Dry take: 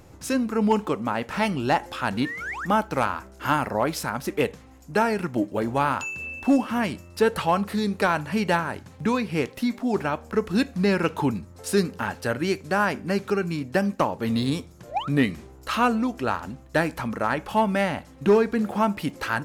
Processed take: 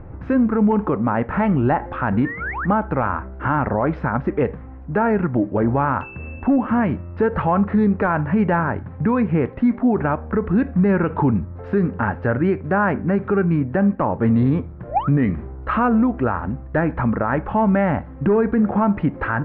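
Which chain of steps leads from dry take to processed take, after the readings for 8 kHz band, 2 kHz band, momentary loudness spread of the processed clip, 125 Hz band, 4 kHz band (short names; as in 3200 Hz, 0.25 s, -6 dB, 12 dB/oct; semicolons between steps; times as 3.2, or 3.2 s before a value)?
under -40 dB, +1.5 dB, 6 LU, +9.5 dB, under -15 dB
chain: LPF 1800 Hz 24 dB/oct; low shelf 140 Hz +10 dB; limiter -17 dBFS, peak gain reduction 9.5 dB; gain +7 dB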